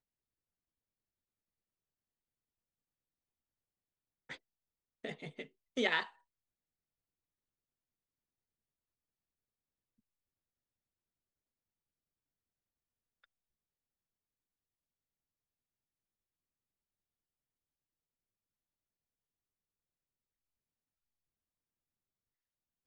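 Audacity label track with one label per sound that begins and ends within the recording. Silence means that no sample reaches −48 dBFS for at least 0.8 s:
4.290000	6.090000	sound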